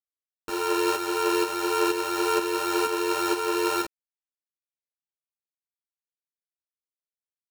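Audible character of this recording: a buzz of ramps at a fixed pitch in blocks of 32 samples; tremolo saw up 2.1 Hz, depth 55%; a quantiser's noise floor 8-bit, dither none; a shimmering, thickened sound

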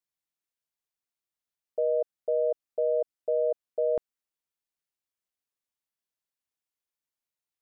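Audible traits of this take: noise floor -92 dBFS; spectral tilt -4.0 dB/oct

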